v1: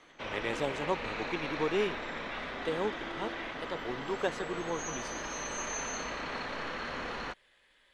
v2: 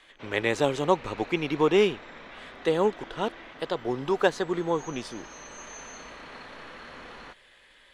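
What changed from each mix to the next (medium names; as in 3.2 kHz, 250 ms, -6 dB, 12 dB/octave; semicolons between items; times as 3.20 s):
speech +9.5 dB; background -6.5 dB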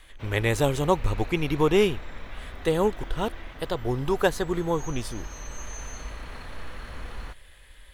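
master: remove three-band isolator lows -22 dB, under 170 Hz, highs -21 dB, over 7.3 kHz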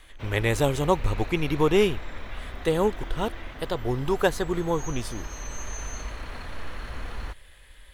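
background +5.0 dB; reverb: off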